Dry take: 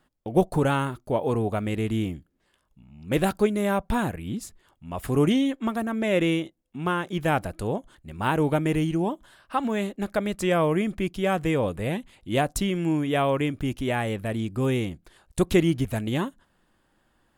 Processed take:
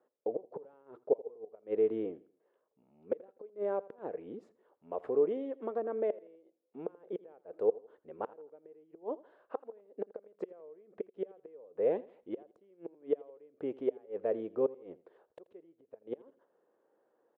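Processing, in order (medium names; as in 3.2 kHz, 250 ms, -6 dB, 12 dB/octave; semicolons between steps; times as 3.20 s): 3.49–6.10 s: compression 2.5:1, threshold -28 dBFS, peak gain reduction 8.5 dB; inverted gate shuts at -17 dBFS, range -31 dB; ladder band-pass 500 Hz, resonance 70%; feedback delay 83 ms, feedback 36%, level -20.5 dB; trim +7 dB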